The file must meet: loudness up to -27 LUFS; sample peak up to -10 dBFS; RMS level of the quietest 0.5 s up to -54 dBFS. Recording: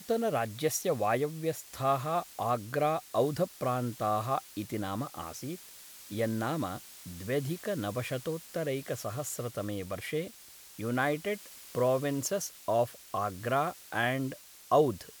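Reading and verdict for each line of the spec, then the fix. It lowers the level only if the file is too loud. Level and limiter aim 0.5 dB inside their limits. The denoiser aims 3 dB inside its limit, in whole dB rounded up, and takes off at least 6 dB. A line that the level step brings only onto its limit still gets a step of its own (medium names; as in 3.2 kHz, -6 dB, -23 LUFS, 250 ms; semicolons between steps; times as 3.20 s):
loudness -32.5 LUFS: pass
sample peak -13.5 dBFS: pass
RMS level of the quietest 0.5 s -52 dBFS: fail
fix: noise reduction 6 dB, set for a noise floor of -52 dBFS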